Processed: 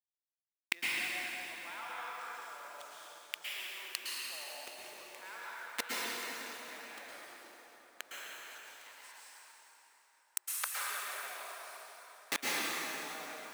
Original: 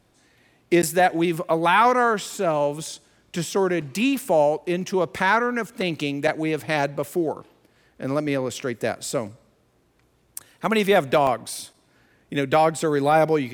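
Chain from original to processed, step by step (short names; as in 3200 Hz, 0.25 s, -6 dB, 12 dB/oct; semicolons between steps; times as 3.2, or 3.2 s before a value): level-crossing sampler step -30.5 dBFS; HPF 1200 Hz 12 dB/oct; flipped gate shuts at -29 dBFS, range -39 dB; 8.17–10.77 frequency shift +350 Hz; plate-style reverb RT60 4.1 s, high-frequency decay 0.75×, pre-delay 0.1 s, DRR -7 dB; gain +11.5 dB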